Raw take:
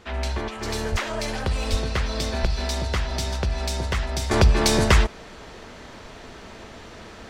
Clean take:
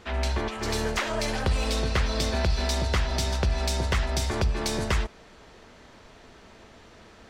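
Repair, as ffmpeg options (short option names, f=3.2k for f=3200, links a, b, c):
-filter_complex "[0:a]asplit=3[a][b][c];[a]afade=t=out:st=0.91:d=0.02[d];[b]highpass=f=140:w=0.5412,highpass=f=140:w=1.3066,afade=t=in:st=0.91:d=0.02,afade=t=out:st=1.03:d=0.02[e];[c]afade=t=in:st=1.03:d=0.02[f];[d][e][f]amix=inputs=3:normalize=0,asplit=3[g][h][i];[g]afade=t=out:st=1.7:d=0.02[j];[h]highpass=f=140:w=0.5412,highpass=f=140:w=1.3066,afade=t=in:st=1.7:d=0.02,afade=t=out:st=1.82:d=0.02[k];[i]afade=t=in:st=1.82:d=0.02[l];[j][k][l]amix=inputs=3:normalize=0,asplit=3[m][n][o];[m]afade=t=out:st=2.41:d=0.02[p];[n]highpass=f=140:w=0.5412,highpass=f=140:w=1.3066,afade=t=in:st=2.41:d=0.02,afade=t=out:st=2.53:d=0.02[q];[o]afade=t=in:st=2.53:d=0.02[r];[p][q][r]amix=inputs=3:normalize=0,asetnsamples=n=441:p=0,asendcmd='4.31 volume volume -9dB',volume=0dB"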